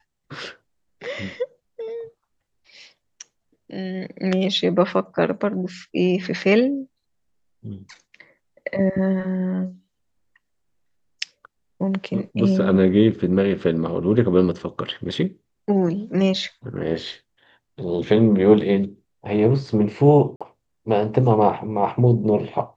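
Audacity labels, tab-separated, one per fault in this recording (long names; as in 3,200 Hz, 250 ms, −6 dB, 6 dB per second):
20.360000	20.410000	drop-out 46 ms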